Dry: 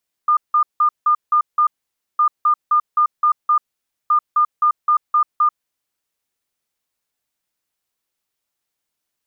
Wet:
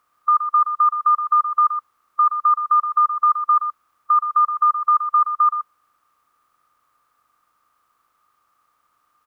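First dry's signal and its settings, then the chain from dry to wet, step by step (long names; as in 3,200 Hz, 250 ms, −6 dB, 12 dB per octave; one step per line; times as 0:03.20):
beeps in groups sine 1,210 Hz, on 0.09 s, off 0.17 s, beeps 6, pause 0.52 s, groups 3, −11 dBFS
compressor on every frequency bin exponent 0.6
on a send: single-tap delay 122 ms −9 dB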